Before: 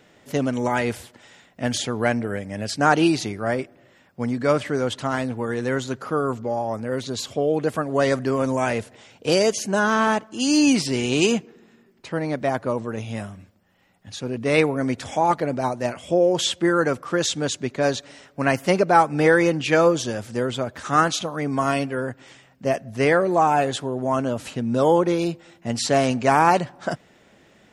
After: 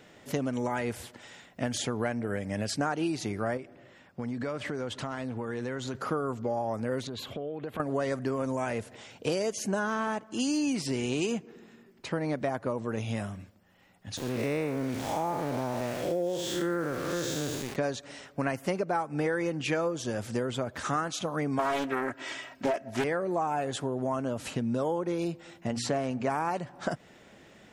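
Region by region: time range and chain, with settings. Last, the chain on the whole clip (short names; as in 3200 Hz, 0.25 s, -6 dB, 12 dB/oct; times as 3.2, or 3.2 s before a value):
3.57–5.95 compressor, threshold -30 dBFS + high shelf 9100 Hz -9 dB
7.07–7.8 band shelf 7000 Hz -15 dB 1.3 oct + compressor 12:1, threshold -32 dBFS
14.17–17.76 time blur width 0.21 s + sample gate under -35 dBFS
21.59–23.04 comb 3.1 ms, depth 62% + overdrive pedal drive 16 dB, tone 4700 Hz, clips at -6.5 dBFS + Doppler distortion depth 0.48 ms
25.67–26.3 high shelf 3700 Hz -8.5 dB + notches 60/120/180/240/300/360/420/480 Hz
whole clip: dynamic EQ 3800 Hz, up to -4 dB, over -39 dBFS, Q 0.94; compressor 6:1, threshold -27 dBFS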